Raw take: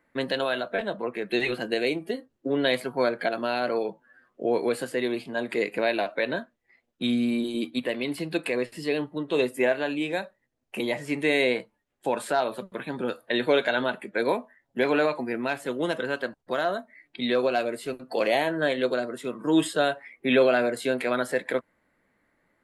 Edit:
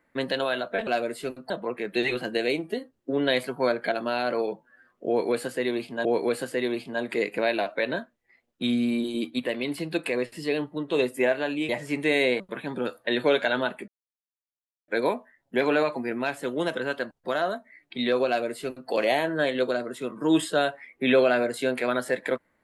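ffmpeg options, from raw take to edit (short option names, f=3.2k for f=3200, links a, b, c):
-filter_complex "[0:a]asplit=7[a][b][c][d][e][f][g];[a]atrim=end=0.872[h];[b]atrim=start=17.498:end=18.132[i];[c]atrim=start=0.868:end=5.422[j];[d]atrim=start=4.448:end=10.092[k];[e]atrim=start=10.878:end=11.592[l];[f]atrim=start=12.628:end=14.11,asetpts=PTS-STARTPTS,afade=t=out:st=1.478:d=0.004:c=hsin,apad=pad_dur=1[m];[g]atrim=start=14.11,asetpts=PTS-STARTPTS,afade=t=in:d=0.004:c=hsin[n];[h][i]acrossfade=d=0.004:c1=hsin:c2=hsin[o];[o][j]acrossfade=d=0.004:c1=hsin:c2=hsin[p];[p][k]acrossfade=d=0.004:c1=hsin:c2=hsin[q];[q][l]acrossfade=d=0.004:c1=hsin:c2=hsin[r];[m][n]concat=n=2:v=0:a=1[s];[r][s]acrossfade=d=0.004:c1=hsin:c2=hsin"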